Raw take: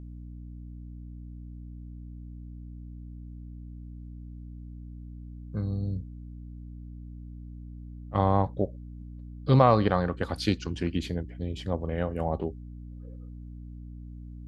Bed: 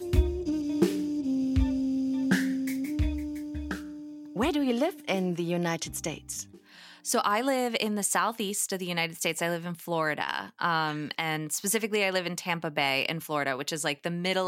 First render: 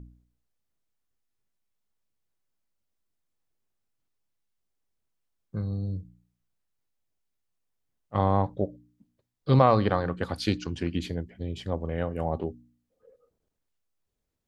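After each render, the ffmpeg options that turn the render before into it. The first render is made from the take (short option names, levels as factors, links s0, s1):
-af "bandreject=f=60:t=h:w=4,bandreject=f=120:t=h:w=4,bandreject=f=180:t=h:w=4,bandreject=f=240:t=h:w=4,bandreject=f=300:t=h:w=4"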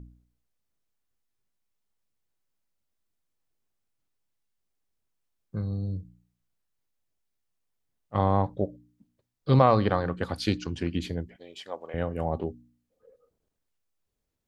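-filter_complex "[0:a]asettb=1/sr,asplit=3[s0][s1][s2];[s0]atrim=end=11.364[s3];[s1]atrim=start=11.36:end=11.94,asetpts=PTS-STARTPTS,afade=t=in:d=0.004:c=qsin,afade=t=out:st=0.576:d=0.004:c=qsin,highpass=630[s4];[s2]atrim=start=11.936[s5];[s3][s4]acrossfade=d=0.004:c1=hsin:c2=qsin[s6];[s6][s5]acrossfade=d=0.004:c1=qsin:c2=hsin"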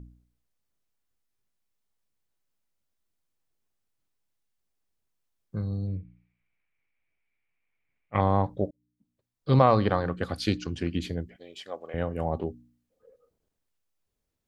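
-filter_complex "[0:a]asettb=1/sr,asplit=3[s0][s1][s2];[s0]atrim=end=5.874[s3];[s1]atrim=start=5.87:end=8.21,asetpts=PTS-STARTPTS,afade=t=in:d=0.004:c=qsin,afade=t=out:st=2.336:d=0.004:c=qsin,lowpass=f=2300:t=q:w=11[s4];[s2]atrim=start=8.206[s5];[s3][s4]acrossfade=d=0.004:c1=hsin:c2=qsin[s6];[s6][s5]acrossfade=d=0.004:c1=qsin:c2=hsin,asettb=1/sr,asplit=3[s7][s8][s9];[s7]atrim=end=10.134[s10];[s8]atrim=start=10.13:end=11.93,asetpts=PTS-STARTPTS,afade=t=in:d=0.004:c=qsin,afade=t=out:st=1.796:d=0.004:c=qsin,bandreject=f=920:w=5.3[s11];[s9]atrim=start=11.926[s12];[s10][s11]acrossfade=d=0.004:c1=hsin:c2=qsin[s13];[s13][s12]acrossfade=d=0.004:c1=qsin:c2=hsin,asplit=2[s14][s15];[s14]atrim=end=8.71,asetpts=PTS-STARTPTS,afade=t=out:st=8.706:d=0.004:c=hsin[s16];[s15]atrim=start=8.71,asetpts=PTS-STARTPTS,afade=t=in:d=0.9[s17];[s16][s17]concat=n=2:v=0:a=1"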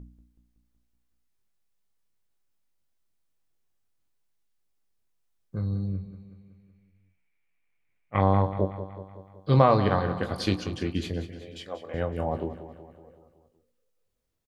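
-filter_complex "[0:a]asplit=2[s0][s1];[s1]adelay=21,volume=0.376[s2];[s0][s2]amix=inputs=2:normalize=0,aecho=1:1:187|374|561|748|935|1122:0.237|0.135|0.077|0.0439|0.025|0.0143"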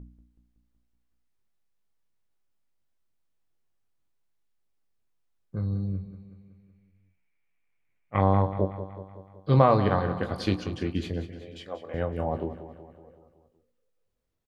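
-af "highshelf=f=3900:g=-7"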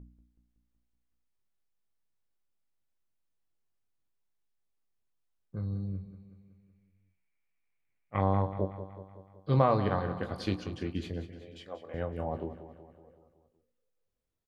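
-af "volume=0.531"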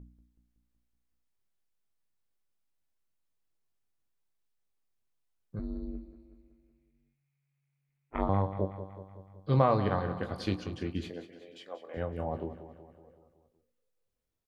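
-filter_complex "[0:a]asettb=1/sr,asplit=3[s0][s1][s2];[s0]atrim=end=5.594[s3];[s1]atrim=start=5.59:end=8.29,asetpts=PTS-STARTPTS,afade=t=in:d=0.004:c=qsin,afade=t=out:st=2.696:d=0.004:c=qsin,aeval=exprs='val(0)*sin(2*PI*140*n/s)':c=same[s4];[s2]atrim=start=8.286[s5];[s3][s4]acrossfade=d=0.004:c1=hsin:c2=qsin[s6];[s6][s5]acrossfade=d=0.004:c1=qsin:c2=hsin,asettb=1/sr,asplit=3[s7][s8][s9];[s7]atrim=end=9.014[s10];[s8]atrim=start=9.01:end=9.47,asetpts=PTS-STARTPTS,afade=t=in:d=0.004:c=qsin,afade=t=out:st=0.456:d=0.004:c=qsin,asubboost=boost=9:cutoff=250[s11];[s9]atrim=start=9.466[s12];[s10][s11]acrossfade=d=0.004:c1=hsin:c2=qsin[s13];[s13][s12]acrossfade=d=0.004:c1=qsin:c2=hsin,asettb=1/sr,asplit=3[s14][s15][s16];[s14]atrim=end=11.104[s17];[s15]atrim=start=11.1:end=11.97,asetpts=PTS-STARTPTS,afade=t=in:d=0.004:c=qsin,afade=t=out:st=0.866:d=0.004:c=qsin,highpass=290[s18];[s16]atrim=start=11.966[s19];[s17][s18]acrossfade=d=0.004:c1=hsin:c2=qsin[s20];[s20][s19]acrossfade=d=0.004:c1=qsin:c2=hsin"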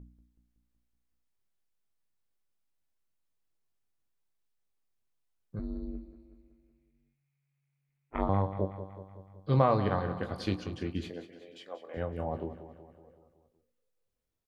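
-af anull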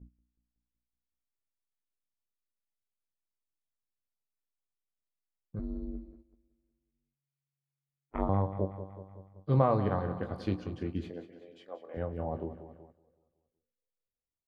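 -af "agate=range=0.251:threshold=0.00251:ratio=16:detection=peak,highshelf=f=2000:g=-11.5"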